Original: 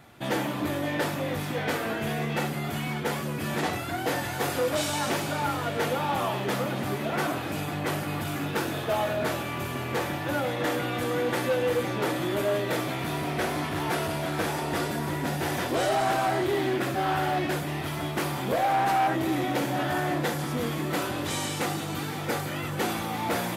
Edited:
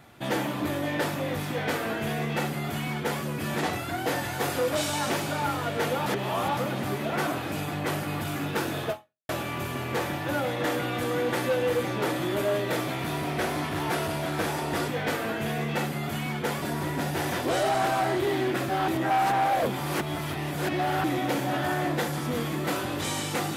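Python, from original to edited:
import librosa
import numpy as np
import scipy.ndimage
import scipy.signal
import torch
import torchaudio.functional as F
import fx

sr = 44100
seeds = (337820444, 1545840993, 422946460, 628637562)

y = fx.edit(x, sr, fx.duplicate(start_s=1.49, length_s=1.74, to_s=14.88),
    fx.reverse_span(start_s=6.06, length_s=0.51),
    fx.fade_out_span(start_s=8.9, length_s=0.39, curve='exp'),
    fx.reverse_span(start_s=17.14, length_s=2.16), tone=tone)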